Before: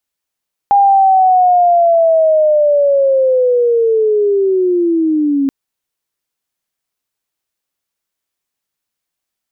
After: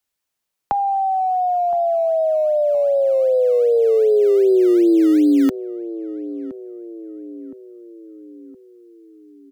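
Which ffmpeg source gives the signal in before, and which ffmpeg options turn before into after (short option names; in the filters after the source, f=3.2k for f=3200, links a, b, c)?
-f lavfi -i "aevalsrc='pow(10,(-5.5-5*t/4.78)/20)*sin(2*PI*(810*t-540*t*t/(2*4.78)))':d=4.78:s=44100"
-filter_complex "[0:a]acrossover=split=120|200|420[a][b][c][d];[b]acrusher=samples=19:mix=1:aa=0.000001:lfo=1:lforange=19:lforate=2.6[e];[d]acompressor=threshold=-22dB:ratio=6[f];[a][e][c][f]amix=inputs=4:normalize=0,asplit=2[g][h];[h]adelay=1017,lowpass=f=840:p=1,volume=-14.5dB,asplit=2[i][j];[j]adelay=1017,lowpass=f=840:p=1,volume=0.54,asplit=2[k][l];[l]adelay=1017,lowpass=f=840:p=1,volume=0.54,asplit=2[m][n];[n]adelay=1017,lowpass=f=840:p=1,volume=0.54,asplit=2[o][p];[p]adelay=1017,lowpass=f=840:p=1,volume=0.54[q];[g][i][k][m][o][q]amix=inputs=6:normalize=0"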